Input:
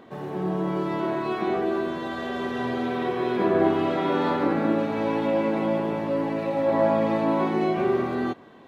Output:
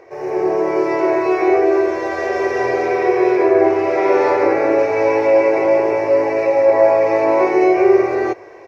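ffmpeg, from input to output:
-af "firequalizer=gain_entry='entry(100,0);entry(210,-25);entry(360,8);entry(550,8);entry(1300,-1);entry(2300,11);entry(3300,-14);entry(5400,14);entry(8100,-3)':delay=0.05:min_phase=1,dynaudnorm=f=150:g=3:m=6dB"

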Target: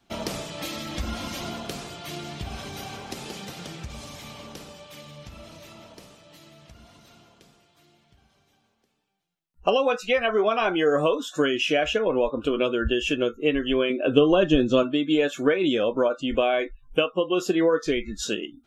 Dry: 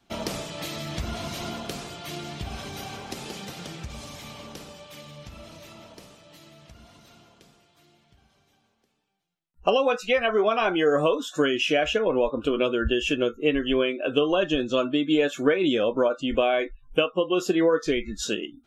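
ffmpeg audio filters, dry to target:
-filter_complex "[0:a]asettb=1/sr,asplit=3[a][b][c];[a]atrim=end=0.624[d];[b]atrim=start=0.62:end=1.41,asetpts=PTS-STARTPTS,afade=t=in:d=0.004:c=qsin,afade=t=out:st=0.786:d=0.004:c=qsin,aecho=1:1:3.7:0.56,atrim=end_sample=34839[e];[c]atrim=start=1.406[f];[d][e]acrossfade=d=0.004:c1=hsin:c2=qsin[g];[g][f]acrossfade=d=0.004:c1=qsin:c2=hsin,asettb=1/sr,asplit=3[h][i][j];[h]atrim=end=13.904[k];[i]atrim=start=13.9:end=14.83,asetpts=PTS-STARTPTS,afade=t=in:d=0.004:c=qsin,afade=t=out:st=0.926:d=0.004:c=qsin,lowshelf=f=400:g=9.5[l];[j]atrim=start=14.826[m];[k][l]acrossfade=d=0.004:c1=hsin:c2=qsin[n];[n][m]acrossfade=d=0.004:c1=qsin:c2=hsin"

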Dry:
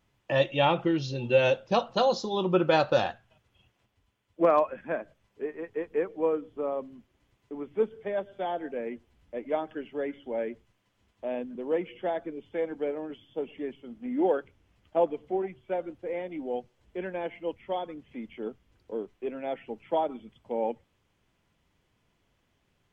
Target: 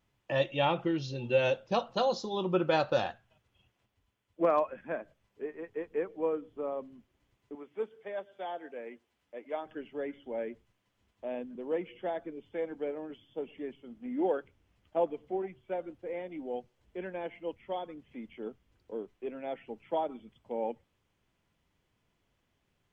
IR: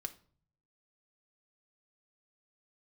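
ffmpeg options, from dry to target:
-filter_complex "[0:a]asettb=1/sr,asplit=3[a][b][c];[a]atrim=end=7.554[d];[b]atrim=start=7.55:end=9.66,asetpts=PTS-STARTPTS,afade=t=in:d=0.004:c=qsin,afade=t=out:st=2.106:d=0.004:c=qsin,highpass=f=570:p=1[e];[c]atrim=start=9.656[f];[d][e]acrossfade=d=0.004:c1=hsin:c2=qsin[g];[g][f]acrossfade=d=0.004:c1=qsin:c2=hsin,volume=-4.5dB"

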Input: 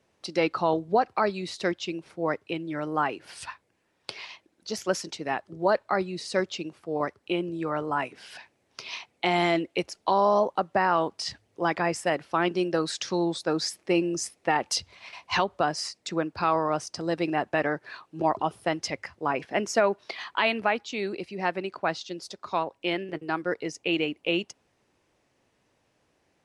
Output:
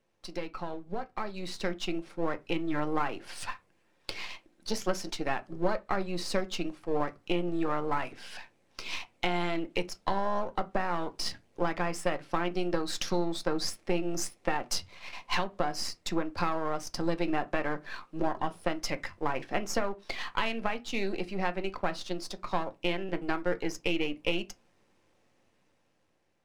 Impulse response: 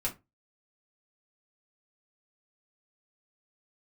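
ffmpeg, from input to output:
-filter_complex "[0:a]aeval=exprs='if(lt(val(0),0),0.447*val(0),val(0))':c=same,acompressor=threshold=-29dB:ratio=6,asplit=2[a][b];[1:a]atrim=start_sample=2205,highshelf=f=8k:g=-11.5[c];[b][c]afir=irnorm=-1:irlink=0,volume=-8.5dB[d];[a][d]amix=inputs=2:normalize=0,dynaudnorm=f=620:g=5:m=8.5dB,volume=-7.5dB"

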